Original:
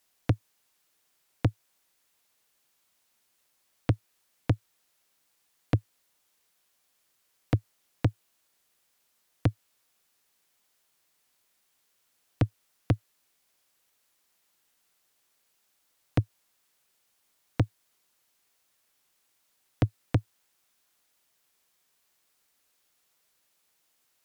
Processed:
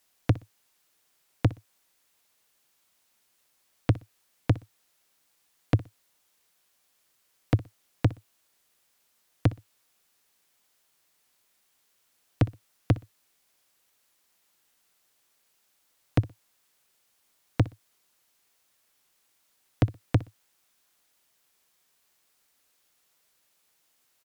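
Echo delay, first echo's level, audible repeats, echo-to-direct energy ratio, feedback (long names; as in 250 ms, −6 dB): 61 ms, −19.5 dB, 2, −19.5 dB, 23%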